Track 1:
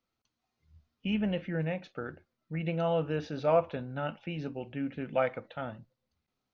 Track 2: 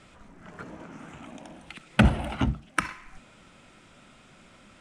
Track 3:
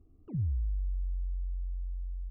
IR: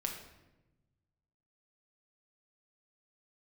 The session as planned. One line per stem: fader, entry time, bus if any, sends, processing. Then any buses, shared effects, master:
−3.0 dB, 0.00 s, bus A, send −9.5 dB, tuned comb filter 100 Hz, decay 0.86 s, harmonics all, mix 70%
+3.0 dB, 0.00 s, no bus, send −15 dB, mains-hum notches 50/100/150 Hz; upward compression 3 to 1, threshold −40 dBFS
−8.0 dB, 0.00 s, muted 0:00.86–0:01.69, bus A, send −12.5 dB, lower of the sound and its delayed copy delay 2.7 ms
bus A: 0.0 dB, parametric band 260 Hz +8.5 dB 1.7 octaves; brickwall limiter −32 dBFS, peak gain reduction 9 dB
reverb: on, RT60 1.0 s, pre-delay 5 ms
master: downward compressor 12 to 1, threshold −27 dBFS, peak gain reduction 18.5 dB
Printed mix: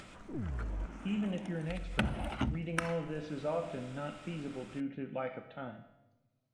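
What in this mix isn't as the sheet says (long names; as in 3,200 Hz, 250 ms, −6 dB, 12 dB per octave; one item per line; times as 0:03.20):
stem 1: send −9.5 dB → −3 dB
stem 2 +3.0 dB → −7.0 dB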